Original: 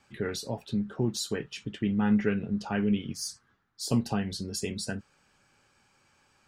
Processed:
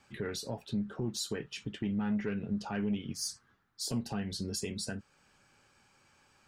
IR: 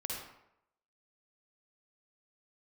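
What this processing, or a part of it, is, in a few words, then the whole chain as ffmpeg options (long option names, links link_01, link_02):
soft clipper into limiter: -af "asoftclip=type=tanh:threshold=-17dB,alimiter=level_in=1.5dB:limit=-24dB:level=0:latency=1:release=365,volume=-1.5dB"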